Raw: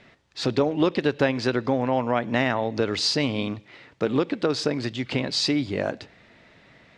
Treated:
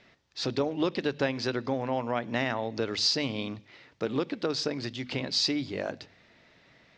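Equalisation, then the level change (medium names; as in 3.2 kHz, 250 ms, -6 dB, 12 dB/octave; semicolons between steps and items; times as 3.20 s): resonant low-pass 5.8 kHz, resonance Q 1.8; hum notches 50/100/150/200/250 Hz; -6.5 dB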